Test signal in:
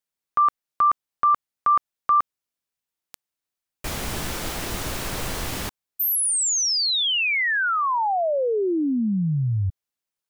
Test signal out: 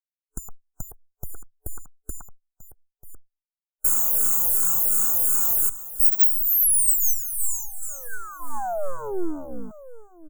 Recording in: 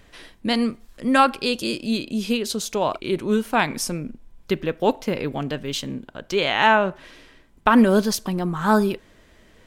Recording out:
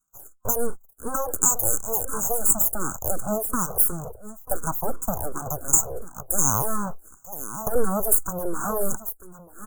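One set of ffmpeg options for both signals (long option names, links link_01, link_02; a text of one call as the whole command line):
ffmpeg -i in.wav -filter_complex "[0:a]agate=range=-33dB:threshold=-38dB:ratio=3:release=46:detection=peak,highpass=frequency=140:width=0.5412,highpass=frequency=140:width=1.3066,aecho=1:1:940:0.133,acrossover=split=430[link_01][link_02];[link_02]acompressor=threshold=-29dB:ratio=6:attack=40:release=64:knee=2.83:detection=peak[link_03];[link_01][link_03]amix=inputs=2:normalize=0,superequalizer=8b=0.355:10b=0.631:11b=1.78:13b=2.82,aeval=exprs='abs(val(0))':channel_layout=same,asuperstop=centerf=3200:order=20:qfactor=0.64,aemphasis=mode=production:type=75fm,acompressor=threshold=-23dB:ratio=2.5:attack=96:release=206:knee=6:detection=peak,asplit=2[link_04][link_05];[link_05]afreqshift=-2.8[link_06];[link_04][link_06]amix=inputs=2:normalize=1,volume=4.5dB" out.wav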